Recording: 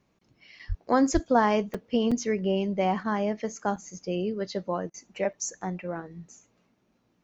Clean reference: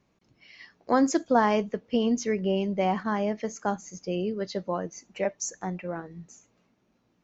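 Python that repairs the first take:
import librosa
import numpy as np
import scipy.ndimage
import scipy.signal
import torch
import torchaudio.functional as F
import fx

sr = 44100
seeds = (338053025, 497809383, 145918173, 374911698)

y = fx.fix_deplosive(x, sr, at_s=(0.68, 1.13))
y = fx.fix_interpolate(y, sr, at_s=(0.59, 1.74, 2.11, 3.76, 5.33), length_ms=5.6)
y = fx.fix_interpolate(y, sr, at_s=(4.9,), length_ms=39.0)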